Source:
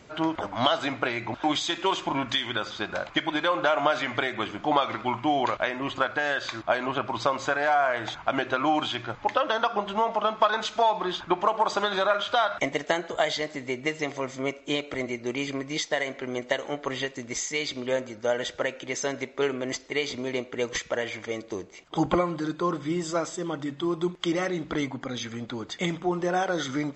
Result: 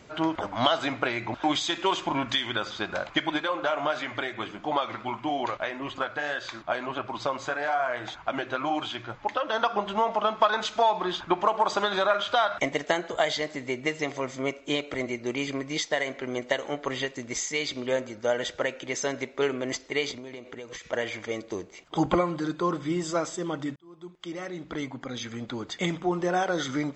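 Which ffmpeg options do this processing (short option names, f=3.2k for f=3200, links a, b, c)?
-filter_complex "[0:a]asplit=3[a][b][c];[a]afade=t=out:st=3.37:d=0.02[d];[b]flanger=delay=1.7:depth=6.7:regen=-50:speed=1.7:shape=triangular,afade=t=in:st=3.37:d=0.02,afade=t=out:st=9.52:d=0.02[e];[c]afade=t=in:st=9.52:d=0.02[f];[d][e][f]amix=inputs=3:normalize=0,asettb=1/sr,asplit=3[g][h][i];[g]atrim=end=20.114[j];[h]atrim=start=20.11:end=20.93,asetpts=PTS-STARTPTS,afade=t=in:d=0.004:c=qsin,afade=t=out:st=0.816:d=0.004:c=qsin,acompressor=threshold=-36dB:ratio=12:attack=3.2:release=140:knee=1:detection=peak[k];[i]atrim=start=20.926[l];[j][k]acrossfade=d=0.004:c1=hsin:c2=qsin[m];[m][l]acrossfade=d=0.004:c1=qsin:c2=hsin,asplit=2[n][o];[n]atrim=end=23.76,asetpts=PTS-STARTPTS,afade=t=out:st=23.756:d=0.004:c=hsin[p];[o]atrim=start=23.76,asetpts=PTS-STARTPTS,afade=t=in:d=1.79[q];[p][q]concat=n=2:v=0:a=1"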